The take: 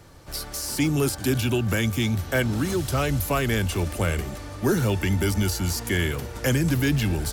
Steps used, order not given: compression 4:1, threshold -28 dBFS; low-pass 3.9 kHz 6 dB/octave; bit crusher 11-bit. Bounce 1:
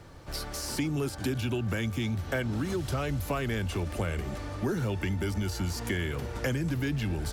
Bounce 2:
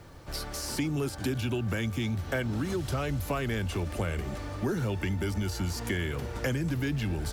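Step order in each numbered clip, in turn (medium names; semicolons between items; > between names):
bit crusher > low-pass > compression; low-pass > compression > bit crusher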